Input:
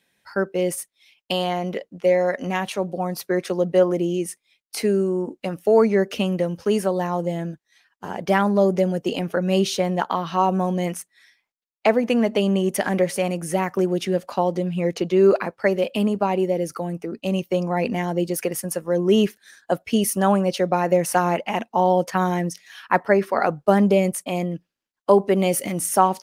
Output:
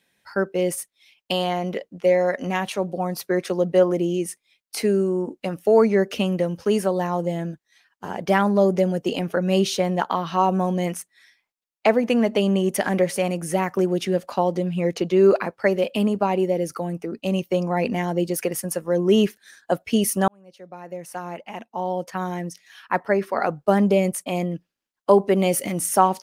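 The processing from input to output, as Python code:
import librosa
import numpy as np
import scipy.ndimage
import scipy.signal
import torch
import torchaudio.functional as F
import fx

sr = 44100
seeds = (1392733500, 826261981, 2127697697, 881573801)

y = fx.edit(x, sr, fx.fade_in_span(start_s=20.28, length_s=4.12), tone=tone)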